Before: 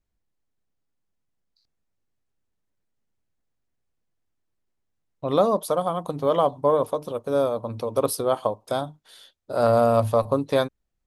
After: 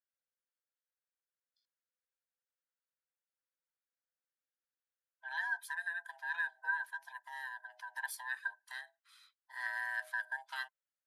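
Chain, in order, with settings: band-swap scrambler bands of 500 Hz; ladder high-pass 1300 Hz, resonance 60%; gain -5 dB

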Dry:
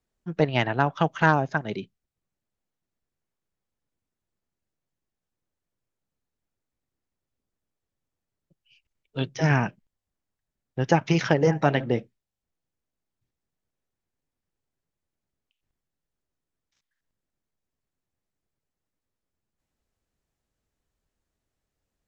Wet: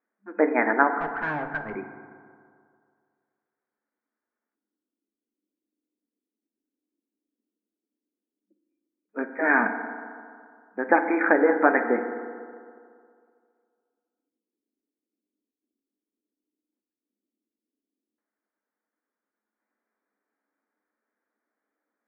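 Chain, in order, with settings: FFT band-pass 200–2500 Hz; 1–1.75 tube stage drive 31 dB, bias 0.4; LFO low-pass square 0.11 Hz 320–1600 Hz; FDN reverb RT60 2.2 s, low-frequency decay 0.9×, high-frequency decay 0.35×, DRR 6.5 dB

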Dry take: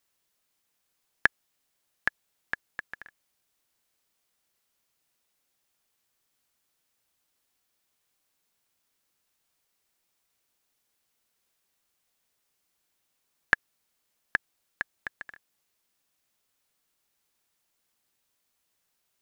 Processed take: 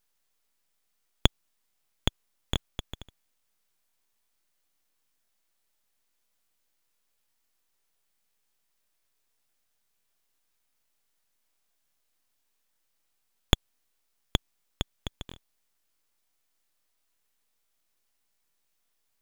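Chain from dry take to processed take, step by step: full-wave rectifier; crackling interface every 0.17 s, samples 1024, repeat, from 0.99; gain +2 dB

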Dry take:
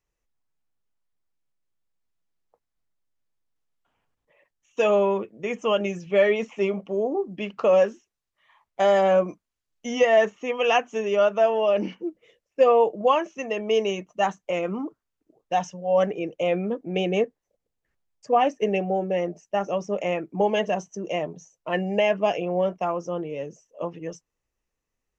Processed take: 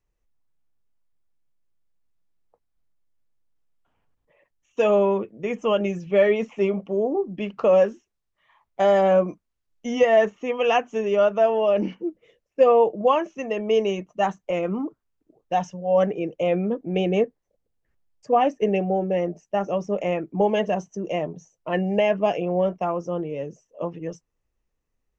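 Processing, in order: tilt -1.5 dB/oct

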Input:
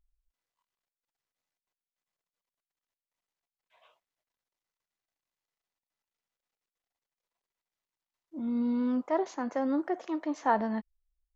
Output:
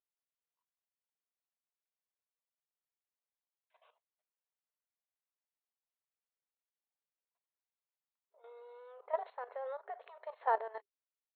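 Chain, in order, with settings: FFT band-pass 400–4300 Hz; level quantiser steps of 13 dB; high shelf 3200 Hz -10.5 dB; gain -1 dB

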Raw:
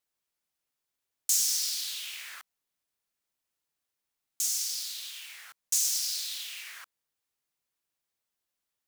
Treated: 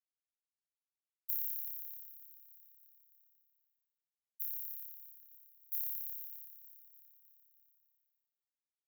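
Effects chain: expander -34 dBFS; inverse Chebyshev band-stop 370–4800 Hz, stop band 70 dB; frequency-shifting echo 0.303 s, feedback 61%, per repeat +140 Hz, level -18.5 dB; robotiser 242 Hz; in parallel at -0.5 dB: compressor, threshold -53 dBFS, peak gain reduction 21.5 dB

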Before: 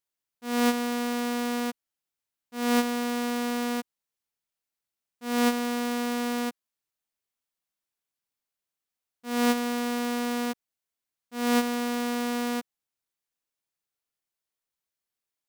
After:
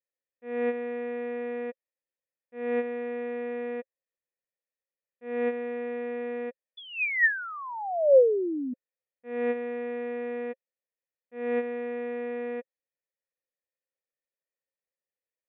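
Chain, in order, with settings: painted sound fall, 6.77–8.74, 240–3500 Hz -22 dBFS; vocal tract filter e; gain +8 dB

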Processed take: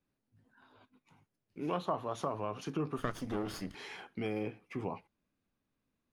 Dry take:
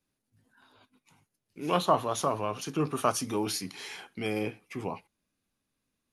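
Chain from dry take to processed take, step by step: 2.98–3.75 minimum comb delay 0.61 ms; LPF 1700 Hz 6 dB/oct; compressor 2.5:1, threshold -34 dBFS, peak gain reduction 10.5 dB

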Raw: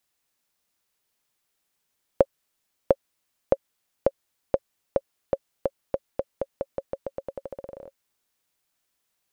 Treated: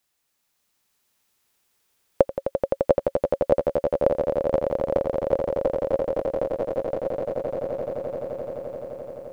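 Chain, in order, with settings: swelling echo 86 ms, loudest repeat 8, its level -7 dB; gain +2 dB

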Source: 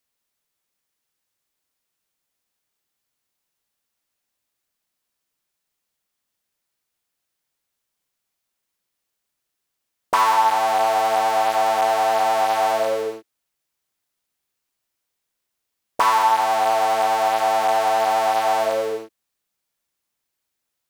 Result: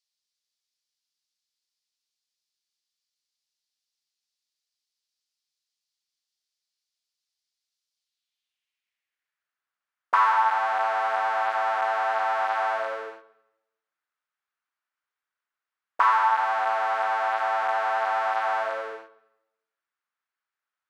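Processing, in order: band-pass sweep 4700 Hz -> 1400 Hz, 7.95–9.6; on a send: reverb RT60 0.90 s, pre-delay 70 ms, DRR 18 dB; on the sum: gain +2.5 dB

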